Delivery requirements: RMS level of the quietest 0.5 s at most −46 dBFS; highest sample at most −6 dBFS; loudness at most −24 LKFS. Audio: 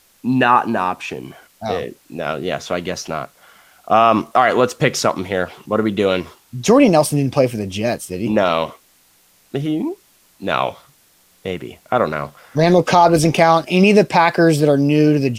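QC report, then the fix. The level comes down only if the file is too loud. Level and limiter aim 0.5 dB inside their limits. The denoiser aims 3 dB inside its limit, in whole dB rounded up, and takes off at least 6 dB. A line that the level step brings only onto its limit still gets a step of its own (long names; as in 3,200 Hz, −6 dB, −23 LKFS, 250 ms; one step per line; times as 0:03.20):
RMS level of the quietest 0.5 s −55 dBFS: in spec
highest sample −1.5 dBFS: out of spec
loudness −16.5 LKFS: out of spec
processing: level −8 dB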